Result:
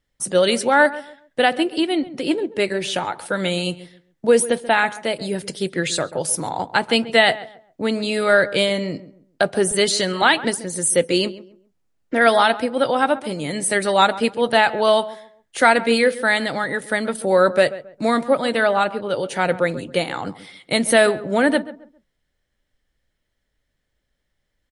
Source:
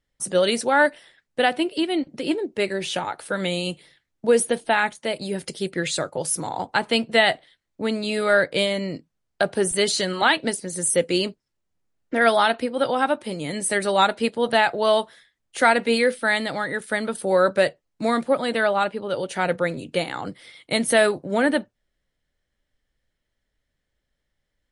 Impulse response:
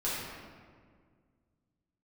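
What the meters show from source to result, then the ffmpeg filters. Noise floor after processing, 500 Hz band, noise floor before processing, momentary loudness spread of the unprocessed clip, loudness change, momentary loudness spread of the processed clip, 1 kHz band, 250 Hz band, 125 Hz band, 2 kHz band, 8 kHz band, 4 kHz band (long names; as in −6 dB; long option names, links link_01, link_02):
−74 dBFS, +3.0 dB, −78 dBFS, 10 LU, +3.0 dB, 10 LU, +3.0 dB, +3.0 dB, +3.0 dB, +3.0 dB, +3.0 dB, +3.0 dB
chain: -filter_complex "[0:a]asplit=2[link_01][link_02];[link_02]adelay=135,lowpass=frequency=1400:poles=1,volume=-15dB,asplit=2[link_03][link_04];[link_04]adelay=135,lowpass=frequency=1400:poles=1,volume=0.3,asplit=2[link_05][link_06];[link_06]adelay=135,lowpass=frequency=1400:poles=1,volume=0.3[link_07];[link_01][link_03][link_05][link_07]amix=inputs=4:normalize=0,volume=3dB"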